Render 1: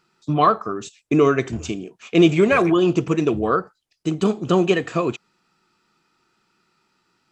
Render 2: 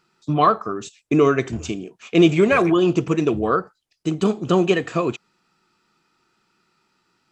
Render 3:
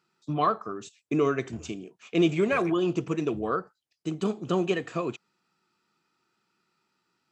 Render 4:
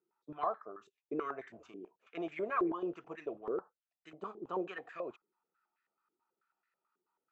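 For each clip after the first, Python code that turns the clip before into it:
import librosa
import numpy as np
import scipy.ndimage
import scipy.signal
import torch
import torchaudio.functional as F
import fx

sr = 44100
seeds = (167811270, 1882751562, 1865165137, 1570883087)

y1 = x
y2 = scipy.signal.sosfilt(scipy.signal.butter(2, 87.0, 'highpass', fs=sr, output='sos'), y1)
y2 = y2 * 10.0 ** (-8.5 / 20.0)
y3 = fx.filter_held_bandpass(y2, sr, hz=9.2, low_hz=390.0, high_hz=1800.0)
y3 = y3 * 10.0 ** (-1.0 / 20.0)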